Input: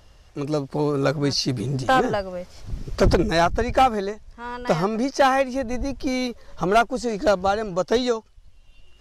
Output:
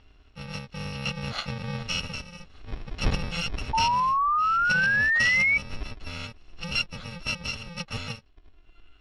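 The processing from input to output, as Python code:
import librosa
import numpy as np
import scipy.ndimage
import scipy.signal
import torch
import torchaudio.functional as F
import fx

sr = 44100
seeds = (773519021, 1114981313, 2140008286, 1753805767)

y = fx.bit_reversed(x, sr, seeds[0], block=128)
y = fx.spec_paint(y, sr, seeds[1], shape='rise', start_s=3.73, length_s=1.85, low_hz=880.0, high_hz=2300.0, level_db=-20.0)
y = fx.ladder_lowpass(y, sr, hz=4300.0, resonance_pct=30)
y = y * 10.0 ** (3.0 / 20.0)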